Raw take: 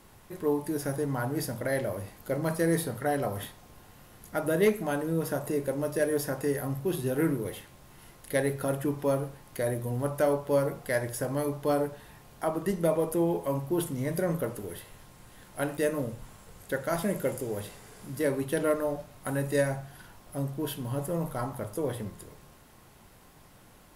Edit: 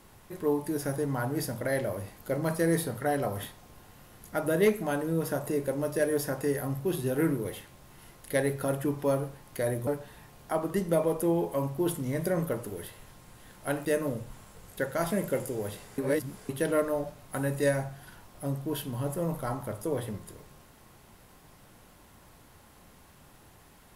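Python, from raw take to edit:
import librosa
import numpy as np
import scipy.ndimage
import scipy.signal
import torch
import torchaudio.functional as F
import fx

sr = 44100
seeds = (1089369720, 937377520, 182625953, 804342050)

y = fx.edit(x, sr, fx.cut(start_s=9.87, length_s=1.92),
    fx.reverse_span(start_s=17.9, length_s=0.51), tone=tone)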